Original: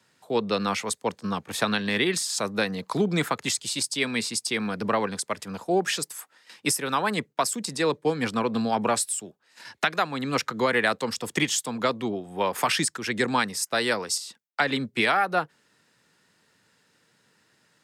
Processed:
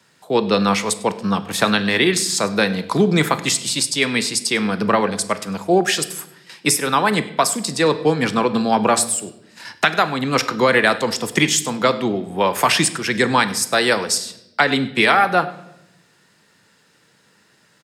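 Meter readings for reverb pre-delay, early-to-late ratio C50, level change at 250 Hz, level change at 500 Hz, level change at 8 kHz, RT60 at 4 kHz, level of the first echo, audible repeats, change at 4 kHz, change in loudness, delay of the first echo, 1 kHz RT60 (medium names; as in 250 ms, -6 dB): 5 ms, 14.5 dB, +8.0 dB, +8.0 dB, +8.0 dB, 0.80 s, -21.5 dB, 1, +8.0 dB, +8.0 dB, 100 ms, 0.75 s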